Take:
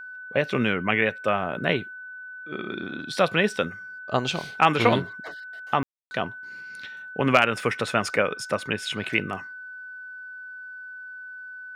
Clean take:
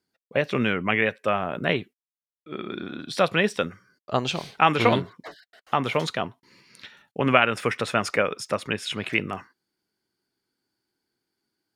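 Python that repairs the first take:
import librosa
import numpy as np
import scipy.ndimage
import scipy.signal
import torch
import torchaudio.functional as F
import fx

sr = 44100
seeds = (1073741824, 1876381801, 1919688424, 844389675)

y = fx.fix_declip(x, sr, threshold_db=-5.0)
y = fx.notch(y, sr, hz=1500.0, q=30.0)
y = fx.fix_ambience(y, sr, seeds[0], print_start_s=9.47, print_end_s=9.97, start_s=5.83, end_s=6.11)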